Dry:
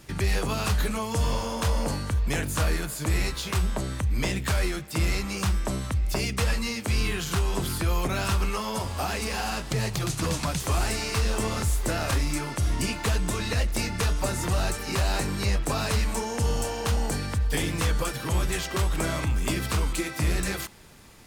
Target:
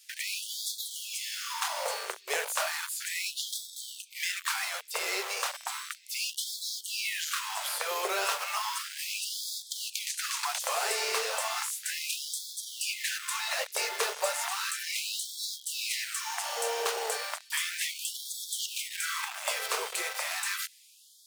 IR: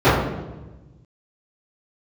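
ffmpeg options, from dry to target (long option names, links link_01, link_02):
-filter_complex "[0:a]acrossover=split=180|2600[link_01][link_02][link_03];[link_02]acrusher=bits=5:mix=0:aa=0.000001[link_04];[link_01][link_04][link_03]amix=inputs=3:normalize=0,afftfilt=real='re*gte(b*sr/1024,360*pow(3300/360,0.5+0.5*sin(2*PI*0.34*pts/sr)))':imag='im*gte(b*sr/1024,360*pow(3300/360,0.5+0.5*sin(2*PI*0.34*pts/sr)))':win_size=1024:overlap=0.75"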